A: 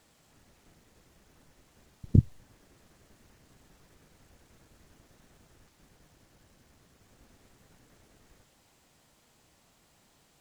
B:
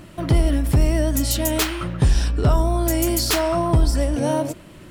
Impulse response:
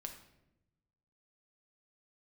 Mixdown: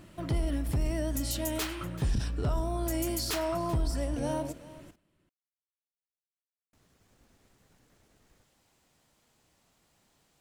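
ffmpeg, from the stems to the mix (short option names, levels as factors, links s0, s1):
-filter_complex "[0:a]volume=0.596,asplit=3[s0][s1][s2];[s0]atrim=end=4.96,asetpts=PTS-STARTPTS,afade=t=out:st=4.956:d=0.004:c=hsin[s3];[s1]atrim=start=4.96:end=6.73,asetpts=PTS-STARTPTS,volume=0[s4];[s2]atrim=start=6.73,asetpts=PTS-STARTPTS,afade=t=in:d=0.004:c=hsin[s5];[s3][s4][s5]concat=n=3:v=0:a=1[s6];[1:a]volume=0.251,asplit=3[s7][s8][s9];[s8]volume=0.316[s10];[s9]volume=0.126[s11];[2:a]atrim=start_sample=2205[s12];[s10][s12]afir=irnorm=-1:irlink=0[s13];[s11]aecho=0:1:384:1[s14];[s6][s7][s13][s14]amix=inputs=4:normalize=0,alimiter=limit=0.0794:level=0:latency=1:release=22"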